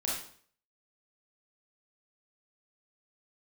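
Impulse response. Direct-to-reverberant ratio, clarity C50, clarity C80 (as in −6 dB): −5.0 dB, 1.0 dB, 6.0 dB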